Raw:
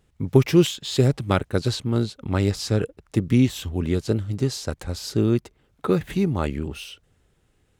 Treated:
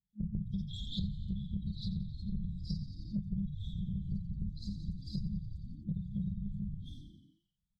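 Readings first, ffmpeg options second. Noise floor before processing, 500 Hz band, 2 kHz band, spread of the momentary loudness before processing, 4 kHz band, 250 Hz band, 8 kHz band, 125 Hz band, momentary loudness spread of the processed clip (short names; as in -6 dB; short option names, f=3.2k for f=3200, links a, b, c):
-65 dBFS, under -40 dB, under -40 dB, 11 LU, -16.5 dB, -15.5 dB, under -30 dB, -14.5 dB, 4 LU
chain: -filter_complex "[0:a]highpass=f=130:p=1,aemphasis=mode=reproduction:type=75kf,acrossover=split=290[a][b];[a]dynaudnorm=f=100:g=3:m=5.5dB[c];[c][b]amix=inputs=2:normalize=0,afftfilt=real='hypot(re,im)*cos(2*PI*random(0))':imag='hypot(re,im)*sin(2*PI*random(1))':win_size=512:overlap=0.75,afftdn=nr=20:nf=-42,bandreject=f=60:t=h:w=6,bandreject=f=120:t=h:w=6,bandreject=f=180:t=h:w=6,acrossover=split=390|3800[d][e][f];[e]adelay=50[g];[f]adelay=100[h];[d][g][h]amix=inputs=3:normalize=0,afftfilt=real='re*(1-between(b*sr/4096,210,3200))':imag='im*(1-between(b*sr/4096,210,3200))':win_size=4096:overlap=0.75,equalizer=f=2k:t=o:w=1:g=14.5,aecho=1:1:4.5:0.5,asplit=2[i][j];[j]asplit=7[k][l][m][n][o][p][q];[k]adelay=88,afreqshift=-49,volume=-10dB[r];[l]adelay=176,afreqshift=-98,volume=-14.4dB[s];[m]adelay=264,afreqshift=-147,volume=-18.9dB[t];[n]adelay=352,afreqshift=-196,volume=-23.3dB[u];[o]adelay=440,afreqshift=-245,volume=-27.7dB[v];[p]adelay=528,afreqshift=-294,volume=-32.2dB[w];[q]adelay=616,afreqshift=-343,volume=-36.6dB[x];[r][s][t][u][v][w][x]amix=inputs=7:normalize=0[y];[i][y]amix=inputs=2:normalize=0,acompressor=threshold=-41dB:ratio=6,volume=6.5dB"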